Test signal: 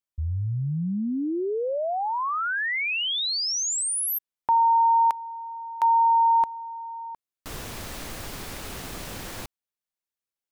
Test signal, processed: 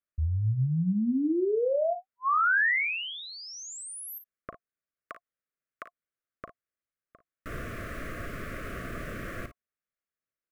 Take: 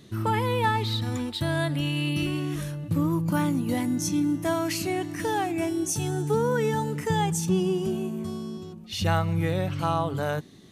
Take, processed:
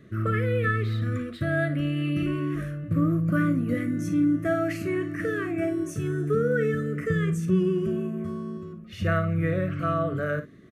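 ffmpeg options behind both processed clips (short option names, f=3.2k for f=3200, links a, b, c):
-filter_complex "[0:a]asuperstop=centerf=870:order=20:qfactor=2.3,highshelf=f=2.7k:t=q:w=1.5:g=-13.5,asplit=2[a][b];[b]aecho=0:1:38|55:0.237|0.237[c];[a][c]amix=inputs=2:normalize=0"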